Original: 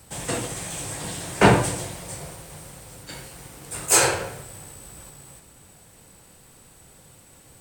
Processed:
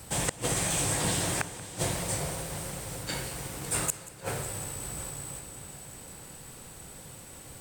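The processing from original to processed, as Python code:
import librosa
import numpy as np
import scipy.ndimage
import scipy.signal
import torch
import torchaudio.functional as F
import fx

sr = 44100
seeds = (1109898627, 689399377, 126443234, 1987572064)

y = fx.gate_flip(x, sr, shuts_db=-16.0, range_db=-39)
y = fx.echo_heads(y, sr, ms=183, heads='first and third', feedback_pct=71, wet_db=-18)
y = y * 10.0 ** (4.0 / 20.0)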